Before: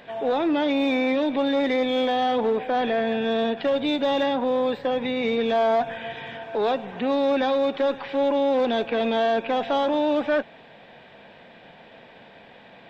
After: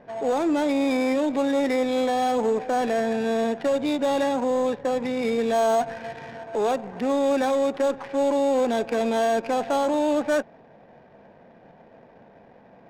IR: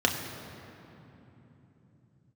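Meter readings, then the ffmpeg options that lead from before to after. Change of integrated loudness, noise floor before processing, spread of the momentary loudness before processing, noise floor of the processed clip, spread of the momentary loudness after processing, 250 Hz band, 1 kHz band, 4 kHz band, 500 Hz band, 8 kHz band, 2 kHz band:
−0.5 dB, −49 dBFS, 4 LU, −52 dBFS, 4 LU, 0.0 dB, −0.5 dB, −5.5 dB, 0.0 dB, can't be measured, −2.5 dB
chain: -af "acrusher=samples=6:mix=1:aa=0.000001,adynamicsmooth=sensitivity=3.5:basefreq=990"

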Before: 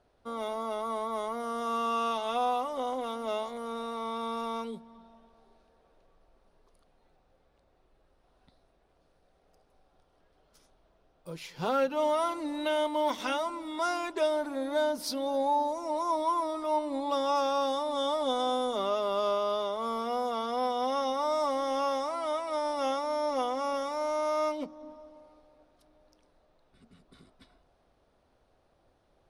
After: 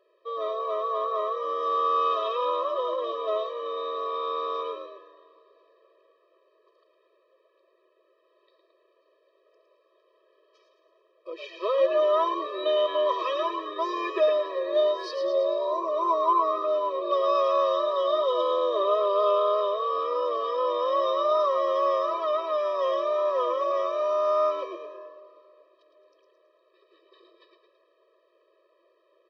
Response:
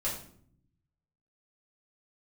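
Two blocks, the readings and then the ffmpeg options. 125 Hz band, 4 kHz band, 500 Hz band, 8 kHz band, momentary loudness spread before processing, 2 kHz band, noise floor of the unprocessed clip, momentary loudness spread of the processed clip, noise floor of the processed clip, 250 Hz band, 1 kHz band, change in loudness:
below −25 dB, +1.0 dB, +6.5 dB, below −10 dB, 7 LU, −0.5 dB, −69 dBFS, 8 LU, −67 dBFS, −5.0 dB, +3.5 dB, +5.0 dB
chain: -filter_complex "[0:a]lowpass=frequency=4000:width=0.5412,lowpass=frequency=4000:width=1.3066,equalizer=frequency=180:width=1.5:gain=-5,asplit=7[link_01][link_02][link_03][link_04][link_05][link_06][link_07];[link_02]adelay=110,afreqshift=85,volume=-6.5dB[link_08];[link_03]adelay=220,afreqshift=170,volume=-12.7dB[link_09];[link_04]adelay=330,afreqshift=255,volume=-18.9dB[link_10];[link_05]adelay=440,afreqshift=340,volume=-25.1dB[link_11];[link_06]adelay=550,afreqshift=425,volume=-31.3dB[link_12];[link_07]adelay=660,afreqshift=510,volume=-37.5dB[link_13];[link_01][link_08][link_09][link_10][link_11][link_12][link_13]amix=inputs=7:normalize=0,afftfilt=real='re*eq(mod(floor(b*sr/1024/330),2),1)':imag='im*eq(mod(floor(b*sr/1024/330),2),1)':win_size=1024:overlap=0.75,volume=6.5dB"

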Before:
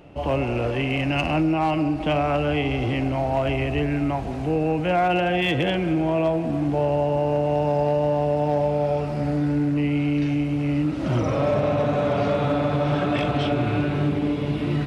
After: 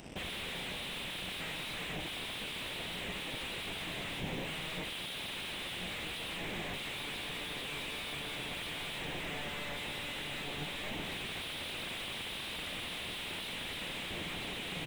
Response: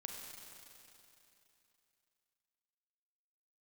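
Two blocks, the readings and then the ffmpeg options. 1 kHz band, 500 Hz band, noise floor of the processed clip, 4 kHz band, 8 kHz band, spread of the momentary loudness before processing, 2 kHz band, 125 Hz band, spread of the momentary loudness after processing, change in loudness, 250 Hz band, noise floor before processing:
−20.0 dB, −24.5 dB, −41 dBFS, −1.5 dB, can't be measured, 3 LU, −7.5 dB, −24.0 dB, 0 LU, −15.5 dB, −24.0 dB, −27 dBFS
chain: -af "aresample=8000,aeval=exprs='0.0299*(abs(mod(val(0)/0.0299+3,4)-2)-1)':channel_layout=same,aresample=44100,equalizer=frequency=180:width=6.7:gain=9.5,flanger=delay=1.5:depth=8.5:regen=73:speed=1.1:shape=triangular,aexciter=amount=15.1:drive=8.1:freq=2100,aeval=exprs='0.0596*(cos(1*acos(clip(val(0)/0.0596,-1,1)))-cos(1*PI/2))+0.0133*(cos(7*acos(clip(val(0)/0.0596,-1,1)))-cos(7*PI/2))':channel_layout=same,asoftclip=type=tanh:threshold=-35dB,tiltshelf=frequency=1400:gain=10"

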